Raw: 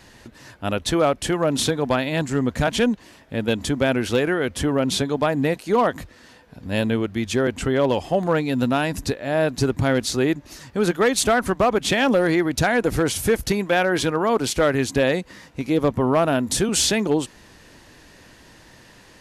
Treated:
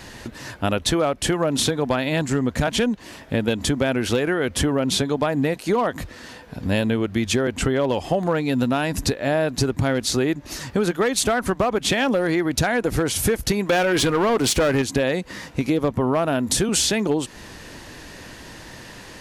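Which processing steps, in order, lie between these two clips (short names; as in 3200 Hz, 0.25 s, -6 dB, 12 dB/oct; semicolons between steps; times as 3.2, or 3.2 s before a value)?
13.69–14.82 sample leveller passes 2; compressor 5:1, threshold -27 dBFS, peak gain reduction 12 dB; gain +8.5 dB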